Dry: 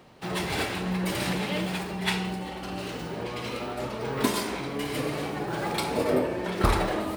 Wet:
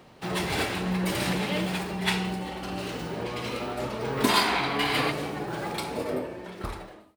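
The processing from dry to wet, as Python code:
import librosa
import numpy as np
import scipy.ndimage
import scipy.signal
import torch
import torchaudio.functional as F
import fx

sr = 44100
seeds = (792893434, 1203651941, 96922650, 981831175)

y = fx.fade_out_tail(x, sr, length_s=2.29)
y = fx.spec_box(y, sr, start_s=4.29, length_s=0.82, low_hz=650.0, high_hz=5000.0, gain_db=9)
y = y * librosa.db_to_amplitude(1.0)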